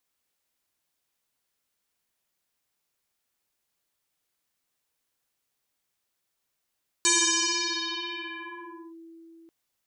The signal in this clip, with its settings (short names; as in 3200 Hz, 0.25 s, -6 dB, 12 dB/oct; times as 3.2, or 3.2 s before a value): FM tone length 2.44 s, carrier 330 Hz, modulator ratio 2.05, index 12, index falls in 1.89 s linear, decay 4.53 s, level -18 dB